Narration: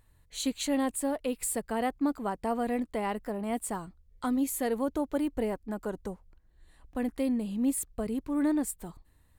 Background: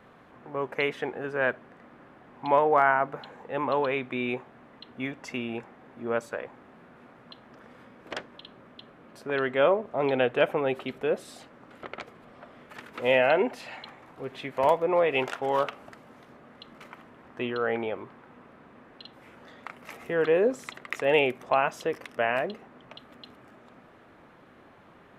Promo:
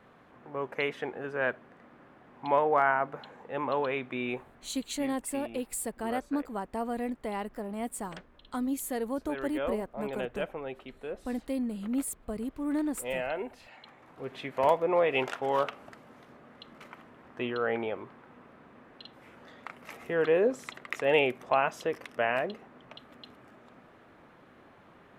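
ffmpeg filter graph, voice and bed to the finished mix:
ffmpeg -i stem1.wav -i stem2.wav -filter_complex "[0:a]adelay=4300,volume=-3dB[link_01];[1:a]volume=6dB,afade=type=out:start_time=4.36:duration=0.57:silence=0.398107,afade=type=in:start_time=13.73:duration=0.56:silence=0.334965[link_02];[link_01][link_02]amix=inputs=2:normalize=0" out.wav

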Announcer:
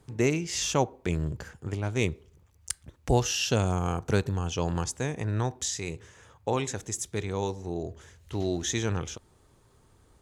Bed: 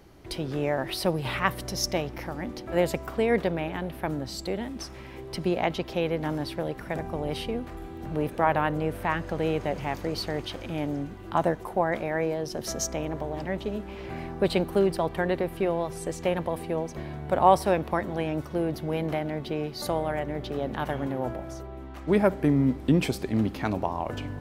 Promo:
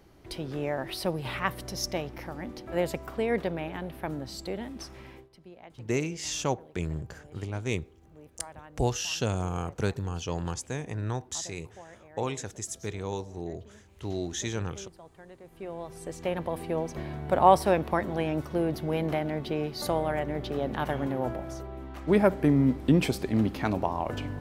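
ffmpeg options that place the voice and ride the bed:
ffmpeg -i stem1.wav -i stem2.wav -filter_complex "[0:a]adelay=5700,volume=-3.5dB[link_01];[1:a]volume=19.5dB,afade=type=out:start_time=5.09:duration=0.2:silence=0.105925,afade=type=in:start_time=15.41:duration=1.49:silence=0.0668344[link_02];[link_01][link_02]amix=inputs=2:normalize=0" out.wav

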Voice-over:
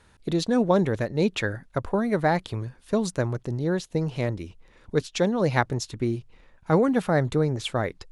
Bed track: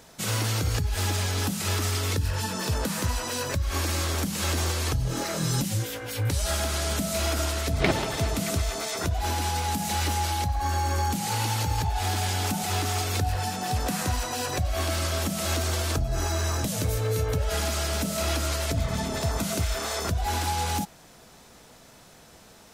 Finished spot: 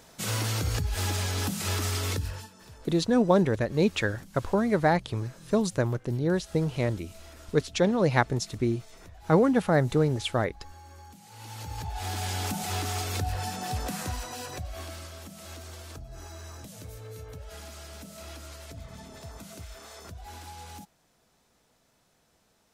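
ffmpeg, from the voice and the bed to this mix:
ffmpeg -i stem1.wav -i stem2.wav -filter_complex "[0:a]adelay=2600,volume=-0.5dB[link_01];[1:a]volume=16.5dB,afade=type=out:start_time=2.1:duration=0.4:silence=0.0944061,afade=type=in:start_time=11.32:duration=1.04:silence=0.112202,afade=type=out:start_time=13.6:duration=1.54:silence=0.237137[link_02];[link_01][link_02]amix=inputs=2:normalize=0" out.wav

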